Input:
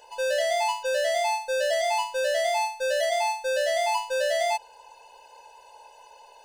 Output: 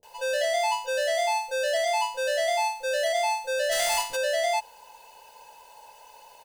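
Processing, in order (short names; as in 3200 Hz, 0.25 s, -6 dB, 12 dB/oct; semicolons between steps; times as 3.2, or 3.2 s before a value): 3.68–4.12 spectral contrast lowered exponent 0.52; requantised 10-bit, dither triangular; bands offset in time lows, highs 30 ms, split 320 Hz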